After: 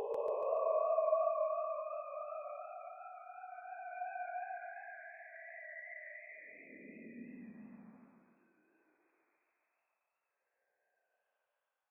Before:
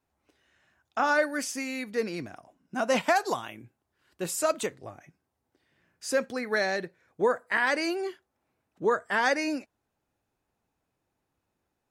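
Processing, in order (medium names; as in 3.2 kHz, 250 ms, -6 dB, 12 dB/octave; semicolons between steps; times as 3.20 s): formants replaced by sine waves; Paulstretch 30×, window 0.05 s, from 4.85 s; modulated delay 142 ms, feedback 54%, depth 98 cents, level -4.5 dB; trim +7.5 dB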